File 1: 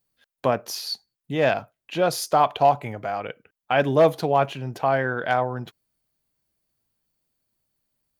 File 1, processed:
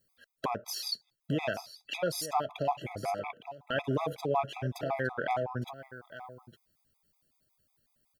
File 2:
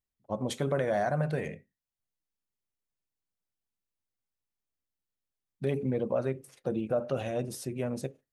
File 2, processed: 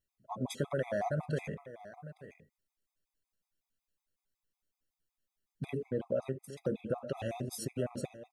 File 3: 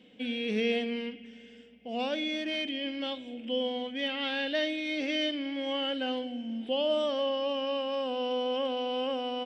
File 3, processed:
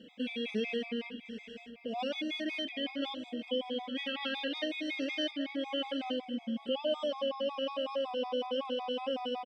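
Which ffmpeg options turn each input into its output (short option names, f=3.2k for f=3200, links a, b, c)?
-filter_complex "[0:a]acompressor=threshold=-39dB:ratio=2,asplit=2[a][b];[b]aecho=0:1:860:0.188[c];[a][c]amix=inputs=2:normalize=0,afftfilt=real='re*gt(sin(2*PI*5.4*pts/sr)*(1-2*mod(floor(b*sr/1024/660),2)),0)':imag='im*gt(sin(2*PI*5.4*pts/sr)*(1-2*mod(floor(b*sr/1024/660),2)),0)':win_size=1024:overlap=0.75,volume=5dB"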